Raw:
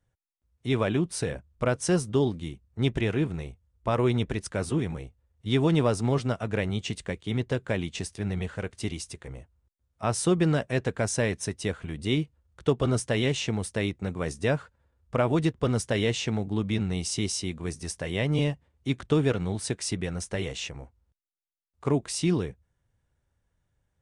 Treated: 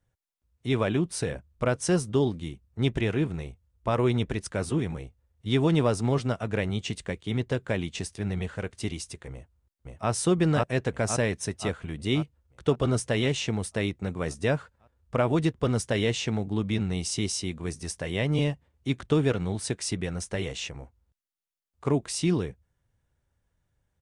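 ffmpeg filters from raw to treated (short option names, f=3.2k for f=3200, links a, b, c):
-filter_complex "[0:a]asplit=2[a][b];[b]afade=t=in:st=9.32:d=0.01,afade=t=out:st=10.1:d=0.01,aecho=0:1:530|1060|1590|2120|2650|3180|3710|4240|4770:0.944061|0.566437|0.339862|0.203917|0.12235|0.0734102|0.0440461|0.0264277|0.0158566[c];[a][c]amix=inputs=2:normalize=0"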